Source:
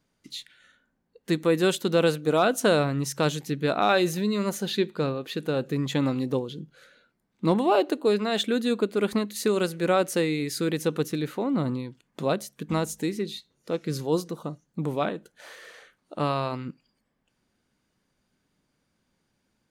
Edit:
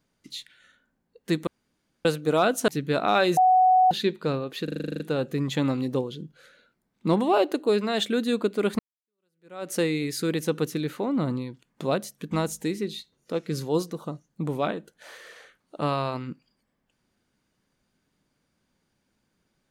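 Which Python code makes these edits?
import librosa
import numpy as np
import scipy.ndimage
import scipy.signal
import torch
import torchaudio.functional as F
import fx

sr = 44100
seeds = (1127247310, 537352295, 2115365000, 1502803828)

y = fx.edit(x, sr, fx.room_tone_fill(start_s=1.47, length_s=0.58),
    fx.cut(start_s=2.68, length_s=0.74),
    fx.bleep(start_s=4.11, length_s=0.54, hz=743.0, db=-14.5),
    fx.stutter(start_s=5.38, slice_s=0.04, count=10),
    fx.fade_in_span(start_s=9.17, length_s=0.94, curve='exp'), tone=tone)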